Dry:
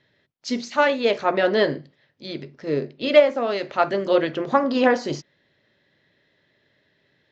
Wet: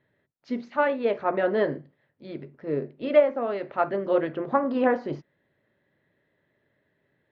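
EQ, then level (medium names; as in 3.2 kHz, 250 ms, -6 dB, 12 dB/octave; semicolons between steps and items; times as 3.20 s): low-pass 1.7 kHz 12 dB/octave; -4.0 dB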